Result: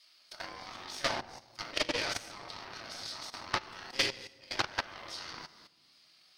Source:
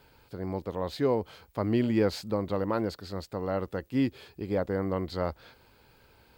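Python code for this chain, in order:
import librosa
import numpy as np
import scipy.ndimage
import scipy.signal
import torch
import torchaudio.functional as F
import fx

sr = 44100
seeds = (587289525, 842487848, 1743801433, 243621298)

y = scipy.signal.sosfilt(scipy.signal.butter(2, 9700.0, 'lowpass', fs=sr, output='sos'), x)
y = fx.spec_gate(y, sr, threshold_db=-15, keep='weak')
y = scipy.signal.sosfilt(scipy.signal.butter(2, 74.0, 'highpass', fs=sr, output='sos'), y)
y = fx.high_shelf(y, sr, hz=3000.0, db=5.5)
y = fx.room_shoebox(y, sr, seeds[0], volume_m3=650.0, walls='mixed', distance_m=2.7)
y = fx.rider(y, sr, range_db=3, speed_s=2.0)
y = fx.cheby_harmonics(y, sr, harmonics=(4, 6, 8), levels_db=(-18, -45, -19), full_scale_db=-19.5)
y = fx.level_steps(y, sr, step_db=11)
y = fx.transient(y, sr, attack_db=10, sustain_db=-3)
y = fx.peak_eq(y, sr, hz=5200.0, db=12.0, octaves=1.2)
y = fx.notch(y, sr, hz=7300.0, q=5.0)
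y = fx.doppler_dist(y, sr, depth_ms=0.23)
y = y * librosa.db_to_amplitude(-4.5)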